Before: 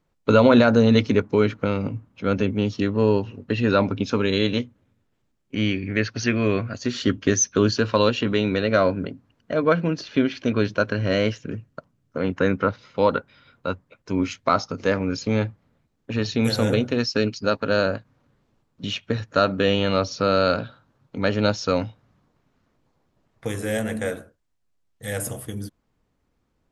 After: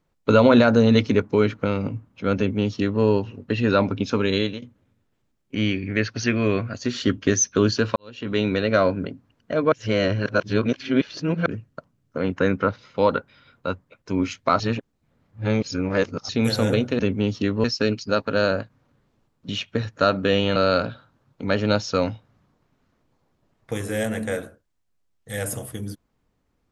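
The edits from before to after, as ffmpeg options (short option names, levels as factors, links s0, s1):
-filter_complex "[0:a]asplit=10[s0][s1][s2][s3][s4][s5][s6][s7][s8][s9];[s0]atrim=end=4.62,asetpts=PTS-STARTPTS,afade=t=out:st=4.37:d=0.25:silence=0.105925[s10];[s1]atrim=start=4.62:end=7.96,asetpts=PTS-STARTPTS,afade=t=in:d=0.004:c=hsin:silence=0.105925,afade=t=out:st=3.336:d=0.004:c=hsin[s11];[s2]atrim=start=7.96:end=9.722,asetpts=PTS-STARTPTS,afade=t=in:d=0.43:c=qua[s12];[s3]atrim=start=9.718:end=11.462,asetpts=PTS-STARTPTS,areverse[s13];[s4]atrim=start=11.458:end=14.602[s14];[s5]atrim=start=14.598:end=16.292,asetpts=PTS-STARTPTS,areverse[s15];[s6]atrim=start=16.288:end=16.992[s16];[s7]atrim=start=2.368:end=3.022[s17];[s8]atrim=start=16.988:end=19.912[s18];[s9]atrim=start=20.298[s19];[s10][s11][s12]concat=n=3:v=0:a=1[s20];[s20][s13]acrossfade=d=0.004:c1=hsin:c2=hsin[s21];[s21][s14]acrossfade=d=0.004:c1=hsin:c2=hsin[s22];[s22][s15]acrossfade=d=0.004:c1=hsin:c2=hsin[s23];[s23][s16]acrossfade=d=0.004:c1=hsin:c2=hsin[s24];[s24][s17]acrossfade=d=0.004:c1=hsin:c2=hsin[s25];[s25][s18]acrossfade=d=0.004:c1=hsin:c2=hsin[s26];[s26][s19]acrossfade=d=0.004:c1=hsin:c2=hsin"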